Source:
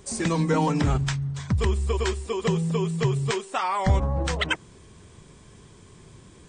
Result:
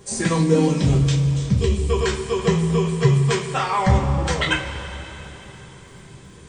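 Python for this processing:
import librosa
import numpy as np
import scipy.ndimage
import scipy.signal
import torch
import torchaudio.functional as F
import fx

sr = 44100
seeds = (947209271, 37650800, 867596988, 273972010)

y = fx.band_shelf(x, sr, hz=1200.0, db=-11.0, octaves=1.7, at=(0.37, 1.9))
y = fx.dmg_crackle(y, sr, seeds[0], per_s=29.0, level_db=-51.0)
y = fx.rev_double_slope(y, sr, seeds[1], early_s=0.27, late_s=4.1, knee_db=-18, drr_db=-3.5)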